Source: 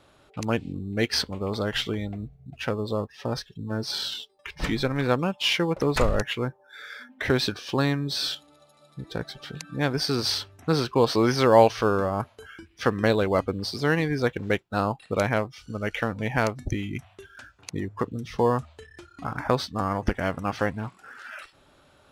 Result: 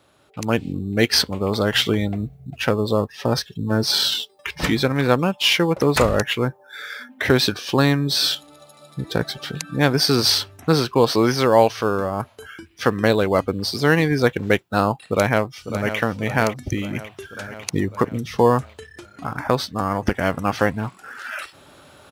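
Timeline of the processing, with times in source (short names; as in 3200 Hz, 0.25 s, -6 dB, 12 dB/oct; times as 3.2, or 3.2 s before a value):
15.01–15.98 echo throw 0.55 s, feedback 60%, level -10.5 dB
whole clip: HPF 75 Hz; high shelf 11000 Hz +10 dB; AGC; gain -1 dB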